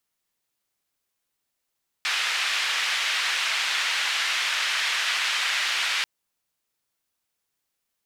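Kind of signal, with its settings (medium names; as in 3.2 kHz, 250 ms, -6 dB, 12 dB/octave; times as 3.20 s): noise band 1.8–2.7 kHz, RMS -25.5 dBFS 3.99 s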